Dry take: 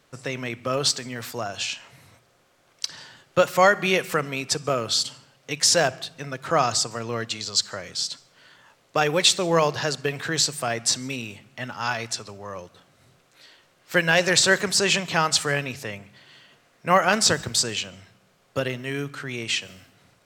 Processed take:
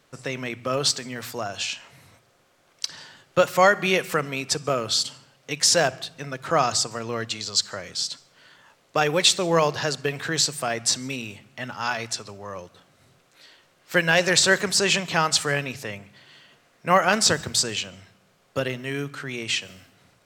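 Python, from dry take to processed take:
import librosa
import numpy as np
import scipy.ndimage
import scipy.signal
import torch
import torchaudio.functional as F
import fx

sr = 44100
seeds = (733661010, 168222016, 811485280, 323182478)

y = fx.hum_notches(x, sr, base_hz=60, count=2)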